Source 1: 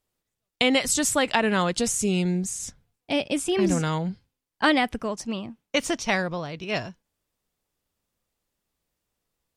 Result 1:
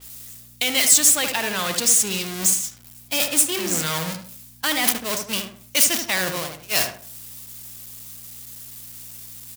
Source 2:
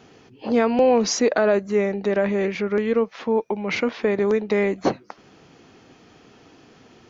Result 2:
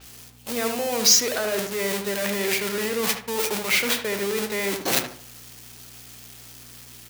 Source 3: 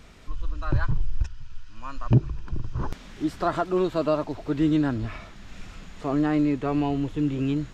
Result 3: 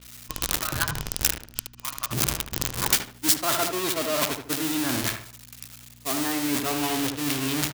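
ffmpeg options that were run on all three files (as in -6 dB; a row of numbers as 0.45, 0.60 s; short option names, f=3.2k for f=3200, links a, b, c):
-filter_complex "[0:a]aeval=exprs='val(0)+0.5*0.0891*sgn(val(0))':c=same,agate=range=-34dB:threshold=-22dB:ratio=16:detection=peak,highpass=f=190:p=1,areverse,acompressor=threshold=-32dB:ratio=5,areverse,crystalizer=i=9:c=0,aeval=exprs='val(0)+0.002*(sin(2*PI*60*n/s)+sin(2*PI*2*60*n/s)/2+sin(2*PI*3*60*n/s)/3+sin(2*PI*4*60*n/s)/4+sin(2*PI*5*60*n/s)/5)':c=same,asplit=2[a][b];[b]adelay=75,lowpass=f=1.5k:p=1,volume=-5dB,asplit=2[c][d];[d]adelay=75,lowpass=f=1.5k:p=1,volume=0.36,asplit=2[e][f];[f]adelay=75,lowpass=f=1.5k:p=1,volume=0.36,asplit=2[g][h];[h]adelay=75,lowpass=f=1.5k:p=1,volume=0.36[i];[c][e][g][i]amix=inputs=4:normalize=0[j];[a][j]amix=inputs=2:normalize=0,adynamicequalizer=threshold=0.0141:dfrequency=5000:dqfactor=0.7:tfrequency=5000:tqfactor=0.7:attack=5:release=100:ratio=0.375:range=3.5:mode=cutabove:tftype=highshelf,volume=2.5dB"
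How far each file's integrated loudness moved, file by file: +5.5, -1.0, +1.5 LU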